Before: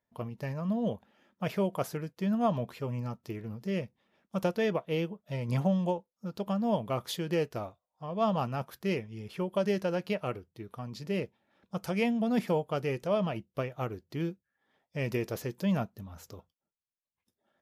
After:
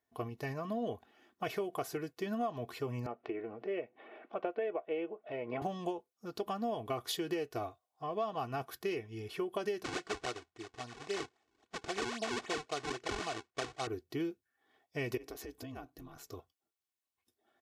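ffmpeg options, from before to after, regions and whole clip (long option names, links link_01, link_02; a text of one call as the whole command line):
ffmpeg -i in.wav -filter_complex "[0:a]asettb=1/sr,asplit=3[link_01][link_02][link_03];[link_01]atrim=end=3.064[link_04];[link_02]atrim=start=3.06:end=5.62,asetpts=PTS-STARTPTS,afade=type=in:duration=0.004:curve=qsin,afade=type=out:start_time=2.556:duration=0.004:curve=qsin,highpass=330,equalizer=frequency=580:width_type=q:width=4:gain=8,equalizer=frequency=1100:width_type=q:width=4:gain=-4,equalizer=frequency=1700:width_type=q:width=4:gain=-4,lowpass=frequency=2400:width=0.5412,lowpass=frequency=2400:width=1.3066,acompressor=mode=upward:threshold=-36dB:ratio=2.5:attack=3.2:release=140:knee=2.83:detection=peak[link_05];[link_03]atrim=start=5.616[link_06];[link_04][link_05]acrossfade=duration=0.004:curve1=hsin:curve2=qsin[link_07];[link_07][link_06]acrossfade=duration=0.004:curve1=qsin:curve2=hsin,asettb=1/sr,asplit=3[link_08][link_09][link_10];[link_08]atrim=end=9.844[link_11];[link_09]atrim=start=9.84:end=13.87,asetpts=PTS-STARTPTS,afade=type=in:duration=0.004:curve=qsin,afade=type=out:start_time=4.026:duration=0.004:curve=qsin,acrusher=samples=41:mix=1:aa=0.000001:lfo=1:lforange=65.6:lforate=3.7,lowpass=frequency=7700:width=0.5412,lowpass=frequency=7700:width=1.3066,lowshelf=frequency=440:gain=-9.5[link_12];[link_10]atrim=start=13.866[link_13];[link_11][link_12]acrossfade=duration=0.004:curve1=hsin:curve2=qsin[link_14];[link_14][link_13]acrossfade=duration=0.004:curve1=qsin:curve2=hsin,asettb=1/sr,asplit=3[link_15][link_16][link_17];[link_15]atrim=end=15.174[link_18];[link_16]atrim=start=15.17:end=16.31,asetpts=PTS-STARTPTS,afade=type=in:duration=0.004:curve=qsin,afade=type=out:start_time=1.136:duration=0.004:curve=qsin,acompressor=threshold=-38dB:ratio=16:attack=3.2:release=140:knee=1:detection=peak,aeval=exprs='val(0)*sin(2*PI*68*n/s)':channel_layout=same[link_19];[link_17]atrim=start=16.306[link_20];[link_18][link_19]acrossfade=duration=0.004:curve1=hsin:curve2=qsin[link_21];[link_21][link_20]acrossfade=duration=0.004:curve1=qsin:curve2=hsin,highpass=frequency=130:poles=1,aecho=1:1:2.7:0.76,acompressor=threshold=-32dB:ratio=10" out.wav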